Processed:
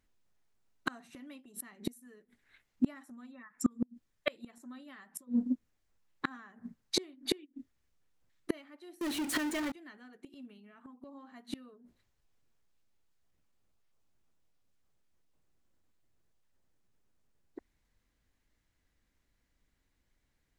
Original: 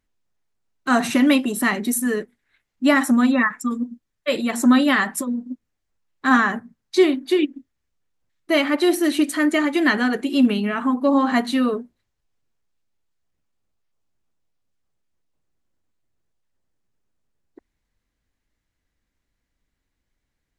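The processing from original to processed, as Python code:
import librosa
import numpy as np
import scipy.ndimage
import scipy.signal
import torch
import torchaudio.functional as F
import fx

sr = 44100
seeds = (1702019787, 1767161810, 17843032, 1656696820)

y = fx.gate_flip(x, sr, shuts_db=-16.0, range_db=-34)
y = fx.power_curve(y, sr, exponent=0.35, at=(9.01, 9.72))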